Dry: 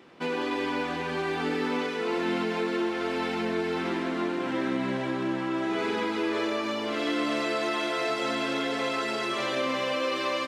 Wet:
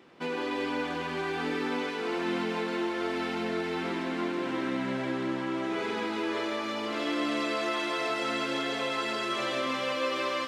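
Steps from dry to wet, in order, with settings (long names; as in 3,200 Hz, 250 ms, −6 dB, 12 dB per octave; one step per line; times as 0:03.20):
feedback echo with a high-pass in the loop 161 ms, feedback 84%, high-pass 420 Hz, level −9 dB
level −3 dB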